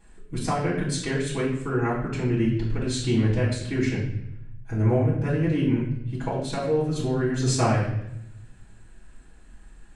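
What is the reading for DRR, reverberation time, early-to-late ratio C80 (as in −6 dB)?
−9.0 dB, 0.80 s, 7.0 dB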